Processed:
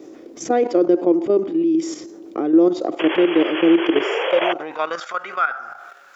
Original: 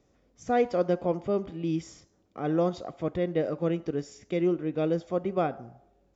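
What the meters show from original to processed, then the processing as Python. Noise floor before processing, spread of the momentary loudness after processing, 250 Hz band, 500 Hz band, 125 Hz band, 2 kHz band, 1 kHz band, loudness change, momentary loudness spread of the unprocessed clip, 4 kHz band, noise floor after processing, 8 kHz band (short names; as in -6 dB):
-68 dBFS, 13 LU, +12.0 dB, +9.0 dB, -8.0 dB, +16.5 dB, +9.5 dB, +10.5 dB, 8 LU, +19.0 dB, -42 dBFS, n/a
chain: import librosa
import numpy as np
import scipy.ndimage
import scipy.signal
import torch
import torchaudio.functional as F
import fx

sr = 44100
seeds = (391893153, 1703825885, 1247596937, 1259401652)

y = fx.spec_paint(x, sr, seeds[0], shape='noise', start_s=2.99, length_s=1.54, low_hz=310.0, high_hz=3400.0, level_db=-30.0)
y = fx.level_steps(y, sr, step_db=13)
y = fx.low_shelf(y, sr, hz=71.0, db=9.0)
y = fx.filter_sweep_highpass(y, sr, from_hz=330.0, to_hz=1400.0, start_s=3.92, end_s=5.08, q=7.4)
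y = fx.env_flatten(y, sr, amount_pct=50)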